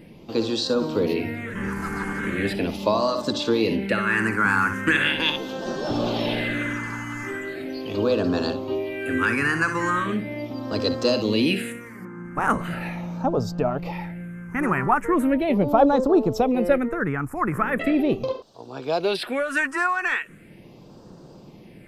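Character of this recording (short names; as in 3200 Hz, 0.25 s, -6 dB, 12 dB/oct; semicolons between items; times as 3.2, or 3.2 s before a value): phasing stages 4, 0.39 Hz, lowest notch 590–2100 Hz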